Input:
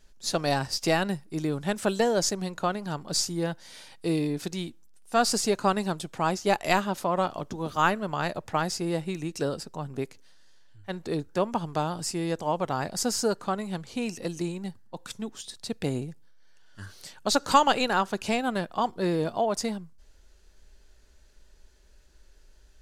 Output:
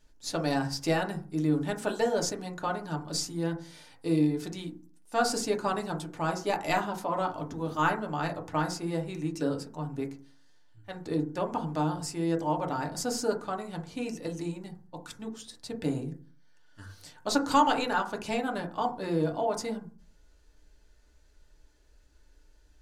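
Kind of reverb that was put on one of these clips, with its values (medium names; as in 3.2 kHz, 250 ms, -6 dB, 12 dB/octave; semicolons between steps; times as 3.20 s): FDN reverb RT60 0.39 s, low-frequency decay 1.4×, high-frequency decay 0.25×, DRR 1.5 dB; trim -6 dB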